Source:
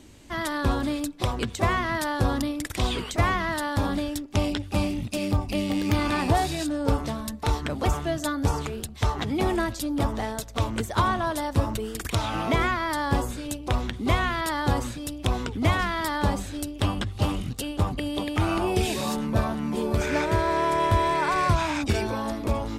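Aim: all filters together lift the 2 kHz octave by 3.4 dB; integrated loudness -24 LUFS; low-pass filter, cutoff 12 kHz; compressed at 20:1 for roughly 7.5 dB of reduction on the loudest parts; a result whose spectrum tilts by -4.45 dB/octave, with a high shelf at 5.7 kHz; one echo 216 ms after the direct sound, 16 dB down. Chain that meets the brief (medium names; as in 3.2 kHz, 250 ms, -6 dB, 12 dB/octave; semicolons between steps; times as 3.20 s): low-pass 12 kHz; peaking EQ 2 kHz +5 dB; treble shelf 5.7 kHz -7.5 dB; compression 20:1, threshold -24 dBFS; delay 216 ms -16 dB; trim +6 dB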